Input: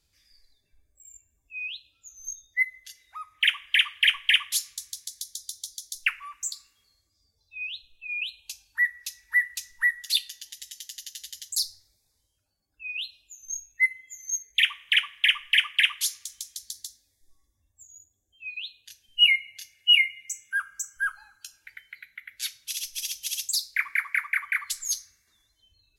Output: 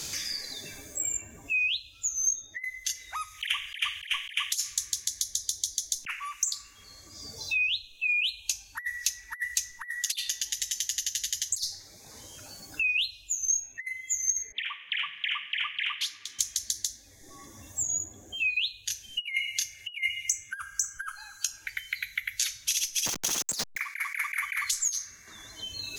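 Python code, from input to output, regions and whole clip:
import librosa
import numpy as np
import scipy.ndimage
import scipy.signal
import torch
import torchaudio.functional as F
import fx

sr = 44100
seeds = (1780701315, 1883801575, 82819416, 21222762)

y = fx.chain(x, sr, fx.highpass(hz=210.0, slope=24),
    fx.air_absorb(metres=440.0), at=(14.52, 16.39))
y = fx.chain(y, sr, fx.delta_hold(step_db=-29.5),
    fx.over_compress(threshold_db=-31.0, ratio=-0.5), at=(23.06, 23.81))
y = fx.over_compress(y, sr, threshold_db=-31.0, ratio=-0.5)
y = fx.peak_eq(y, sr, hz=6400.0, db=9.5, octaves=0.38)
y = fx.band_squash(y, sr, depth_pct=100)
y = y * librosa.db_to_amplitude(-1.0)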